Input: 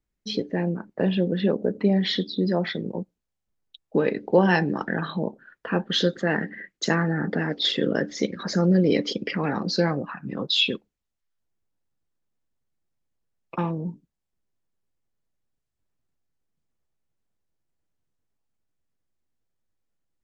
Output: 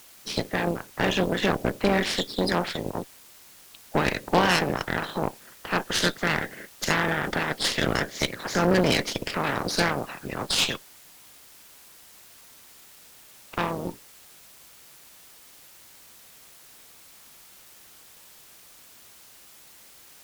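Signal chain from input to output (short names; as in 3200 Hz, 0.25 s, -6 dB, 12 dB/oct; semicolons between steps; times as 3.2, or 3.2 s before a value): spectral limiter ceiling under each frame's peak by 24 dB; requantised 8-bit, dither triangular; added harmonics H 8 -17 dB, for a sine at -4.5 dBFS; gain -2.5 dB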